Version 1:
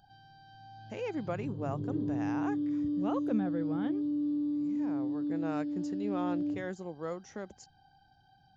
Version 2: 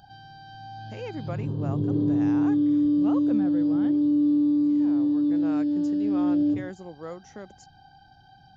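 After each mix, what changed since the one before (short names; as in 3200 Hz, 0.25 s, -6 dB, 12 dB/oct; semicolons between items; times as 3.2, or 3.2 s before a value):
background +10.5 dB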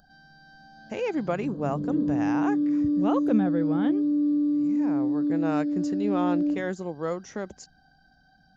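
speech +8.0 dB; background: add fixed phaser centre 560 Hz, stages 8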